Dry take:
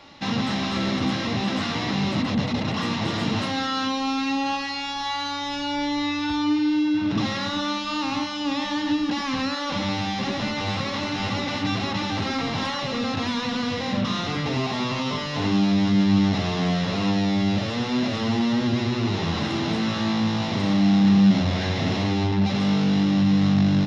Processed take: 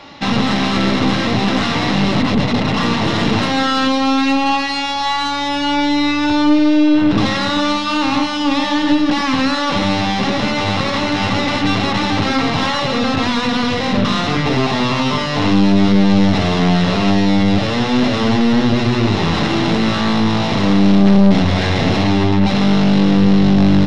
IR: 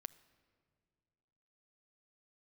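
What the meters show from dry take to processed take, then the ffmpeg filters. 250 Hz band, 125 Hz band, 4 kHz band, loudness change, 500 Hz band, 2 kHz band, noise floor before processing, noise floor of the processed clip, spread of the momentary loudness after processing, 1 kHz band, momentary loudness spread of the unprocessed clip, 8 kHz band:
+8.0 dB, +7.5 dB, +8.0 dB, +8.5 dB, +11.0 dB, +9.5 dB, -29 dBFS, -19 dBFS, 5 LU, +10.0 dB, 7 LU, no reading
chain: -filter_complex "[0:a]aeval=exprs='(tanh(8.91*val(0)+0.55)-tanh(0.55))/8.91':c=same,asplit=2[s0][s1];[1:a]atrim=start_sample=2205,lowshelf=f=180:g=-3.5,highshelf=f=6400:g=-10[s2];[s1][s2]afir=irnorm=-1:irlink=0,volume=6.31[s3];[s0][s3]amix=inputs=2:normalize=0"

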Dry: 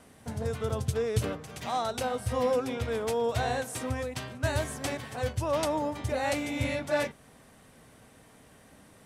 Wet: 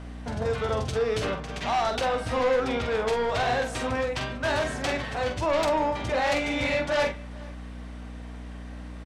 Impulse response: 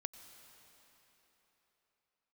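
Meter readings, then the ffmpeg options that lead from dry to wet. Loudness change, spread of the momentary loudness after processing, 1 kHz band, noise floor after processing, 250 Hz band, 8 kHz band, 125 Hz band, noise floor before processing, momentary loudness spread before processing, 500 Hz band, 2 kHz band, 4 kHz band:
+4.5 dB, 16 LU, +6.0 dB, -39 dBFS, +2.5 dB, -1.0 dB, -1.0 dB, -57 dBFS, 6 LU, +4.5 dB, +7.0 dB, +6.0 dB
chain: -filter_complex "[0:a]lowpass=4600,acrossover=split=480[s0][s1];[s0]asoftclip=type=hard:threshold=0.0251[s2];[s1]acontrast=44[s3];[s2][s3]amix=inputs=2:normalize=0,aeval=exprs='val(0)+0.00891*(sin(2*PI*60*n/s)+sin(2*PI*2*60*n/s)/2+sin(2*PI*3*60*n/s)/3+sin(2*PI*4*60*n/s)/4+sin(2*PI*5*60*n/s)/5)':c=same,asplit=2[s4][s5];[s5]aeval=exprs='0.251*sin(PI/2*3.16*val(0)/0.251)':c=same,volume=0.501[s6];[s4][s6]amix=inputs=2:normalize=0,asplit=2[s7][s8];[s8]adelay=46,volume=0.473[s9];[s7][s9]amix=inputs=2:normalize=0,aecho=1:1:438:0.0668,volume=0.398"

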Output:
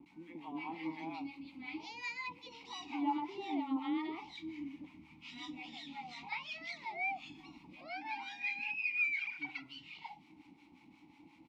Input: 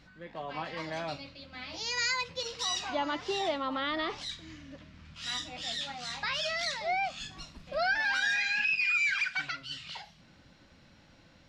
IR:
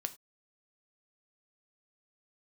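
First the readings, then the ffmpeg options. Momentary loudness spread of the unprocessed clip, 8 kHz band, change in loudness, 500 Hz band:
17 LU, -22.5 dB, -8.5 dB, -15.0 dB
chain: -filter_complex "[0:a]asplit=2[s0][s1];[s1]acompressor=threshold=0.01:ratio=16,volume=1.12[s2];[s0][s2]amix=inputs=2:normalize=0,acrossover=split=400|1400[s3][s4][s5];[s5]adelay=60[s6];[s4]adelay=90[s7];[s3][s7][s6]amix=inputs=3:normalize=0,acrusher=bits=8:mix=0:aa=0.000001,asplit=3[s8][s9][s10];[s8]bandpass=f=300:t=q:w=8,volume=1[s11];[s9]bandpass=f=870:t=q:w=8,volume=0.501[s12];[s10]bandpass=f=2240:t=q:w=8,volume=0.355[s13];[s11][s12][s13]amix=inputs=3:normalize=0,acrossover=split=810[s14][s15];[s14]aeval=exprs='val(0)*(1-0.7/2+0.7/2*cos(2*PI*5.6*n/s))':c=same[s16];[s15]aeval=exprs='val(0)*(1-0.7/2-0.7/2*cos(2*PI*5.6*n/s))':c=same[s17];[s16][s17]amix=inputs=2:normalize=0,volume=2.66"

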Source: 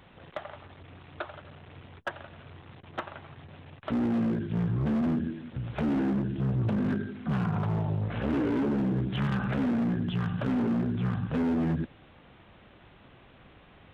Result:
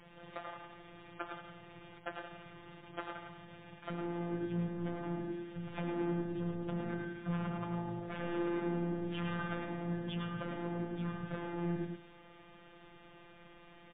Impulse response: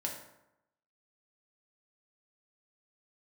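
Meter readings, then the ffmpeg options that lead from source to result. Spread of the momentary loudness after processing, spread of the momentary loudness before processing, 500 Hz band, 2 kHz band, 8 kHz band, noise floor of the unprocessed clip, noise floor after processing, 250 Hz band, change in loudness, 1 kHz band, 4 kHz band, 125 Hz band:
21 LU, 19 LU, -5.0 dB, -5.0 dB, no reading, -55 dBFS, -58 dBFS, -10.5 dB, -10.0 dB, -5.0 dB, -5.5 dB, -10.5 dB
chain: -filter_complex "[0:a]asplit=2[s0][s1];[s1]aecho=0:1:179|358:0.0631|0.0107[s2];[s0][s2]amix=inputs=2:normalize=0,asoftclip=type=tanh:threshold=0.0355,afftfilt=real='hypot(re,im)*cos(PI*b)':imag='0':win_size=1024:overlap=0.75,asplit=2[s3][s4];[s4]aecho=0:1:107:0.562[s5];[s3][s5]amix=inputs=2:normalize=0,volume=1.12" -ar 8000 -c:a libmp3lame -b:a 16k

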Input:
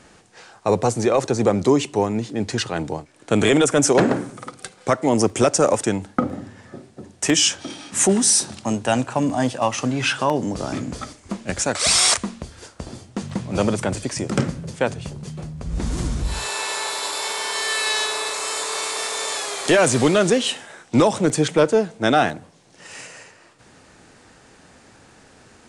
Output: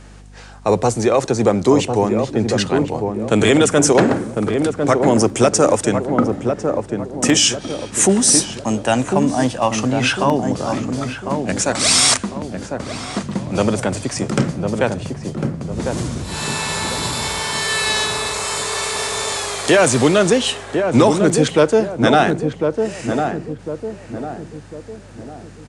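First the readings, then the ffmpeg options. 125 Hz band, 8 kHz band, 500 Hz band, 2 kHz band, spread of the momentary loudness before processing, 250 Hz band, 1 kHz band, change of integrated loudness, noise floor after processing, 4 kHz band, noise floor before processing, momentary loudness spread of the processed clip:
+4.5 dB, +3.0 dB, +4.5 dB, +3.5 dB, 17 LU, +4.5 dB, +4.0 dB, +3.0 dB, -38 dBFS, +3.0 dB, -51 dBFS, 13 LU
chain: -filter_complex "[0:a]highpass=f=83:w=0.5412,highpass=f=83:w=1.3066,aeval=exprs='val(0)+0.00708*(sin(2*PI*50*n/s)+sin(2*PI*2*50*n/s)/2+sin(2*PI*3*50*n/s)/3+sin(2*PI*4*50*n/s)/4+sin(2*PI*5*50*n/s)/5)':c=same,asplit=2[s0][s1];[s1]adelay=1051,lowpass=f=860:p=1,volume=0.631,asplit=2[s2][s3];[s3]adelay=1051,lowpass=f=860:p=1,volume=0.47,asplit=2[s4][s5];[s5]adelay=1051,lowpass=f=860:p=1,volume=0.47,asplit=2[s6][s7];[s7]adelay=1051,lowpass=f=860:p=1,volume=0.47,asplit=2[s8][s9];[s9]adelay=1051,lowpass=f=860:p=1,volume=0.47,asplit=2[s10][s11];[s11]adelay=1051,lowpass=f=860:p=1,volume=0.47[s12];[s2][s4][s6][s8][s10][s12]amix=inputs=6:normalize=0[s13];[s0][s13]amix=inputs=2:normalize=0,volume=1.41"

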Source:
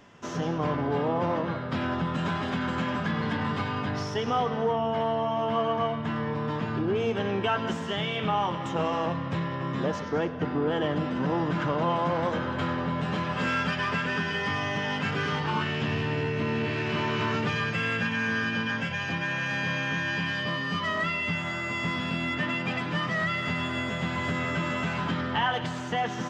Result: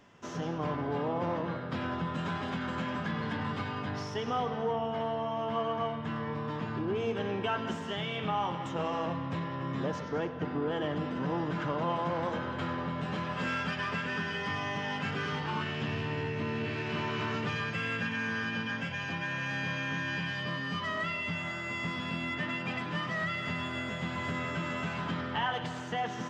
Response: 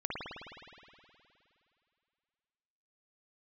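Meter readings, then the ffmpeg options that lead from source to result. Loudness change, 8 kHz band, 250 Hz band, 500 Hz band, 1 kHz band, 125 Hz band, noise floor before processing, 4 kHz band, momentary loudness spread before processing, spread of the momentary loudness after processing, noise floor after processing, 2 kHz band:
-5.5 dB, -5.5 dB, -5.5 dB, -5.5 dB, -5.0 dB, -5.5 dB, -33 dBFS, -5.5 dB, 3 LU, 3 LU, -38 dBFS, -5.5 dB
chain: -filter_complex "[0:a]asplit=2[s0][s1];[1:a]atrim=start_sample=2205[s2];[s1][s2]afir=irnorm=-1:irlink=0,volume=0.158[s3];[s0][s3]amix=inputs=2:normalize=0,volume=0.473"

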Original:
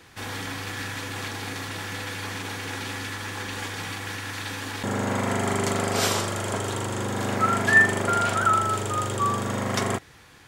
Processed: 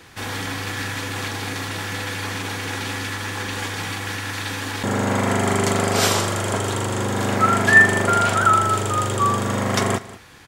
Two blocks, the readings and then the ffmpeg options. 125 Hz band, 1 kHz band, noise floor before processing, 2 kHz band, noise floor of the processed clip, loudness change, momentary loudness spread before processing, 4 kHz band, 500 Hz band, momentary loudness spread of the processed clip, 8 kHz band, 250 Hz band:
+5.5 dB, +5.0 dB, -51 dBFS, +5.0 dB, -38 dBFS, +5.0 dB, 11 LU, +5.0 dB, +5.0 dB, 11 LU, +5.0 dB, +5.0 dB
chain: -af "aecho=1:1:190:0.126,volume=1.78"

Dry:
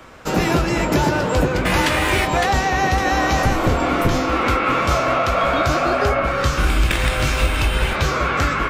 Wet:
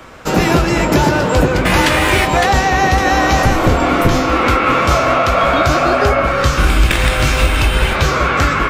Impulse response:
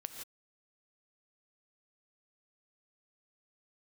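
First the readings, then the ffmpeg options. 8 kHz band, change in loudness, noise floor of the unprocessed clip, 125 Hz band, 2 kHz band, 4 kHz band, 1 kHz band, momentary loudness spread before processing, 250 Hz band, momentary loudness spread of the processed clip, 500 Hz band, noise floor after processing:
+5.0 dB, +5.0 dB, -22 dBFS, +5.0 dB, +5.0 dB, +5.0 dB, +5.0 dB, 2 LU, +5.0 dB, 2 LU, +5.0 dB, -17 dBFS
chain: -filter_complex "[0:a]asplit=2[s0][s1];[1:a]atrim=start_sample=2205[s2];[s1][s2]afir=irnorm=-1:irlink=0,volume=0.422[s3];[s0][s3]amix=inputs=2:normalize=0,volume=1.41"

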